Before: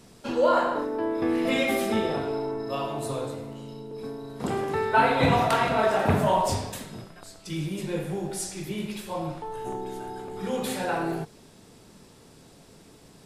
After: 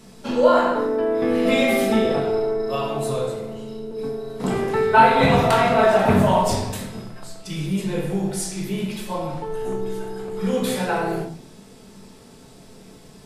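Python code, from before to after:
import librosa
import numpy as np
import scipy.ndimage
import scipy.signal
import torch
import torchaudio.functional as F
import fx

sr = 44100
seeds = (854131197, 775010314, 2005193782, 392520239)

y = fx.room_shoebox(x, sr, seeds[0], volume_m3=400.0, walls='furnished', distance_m=1.5)
y = F.gain(torch.from_numpy(y), 3.0).numpy()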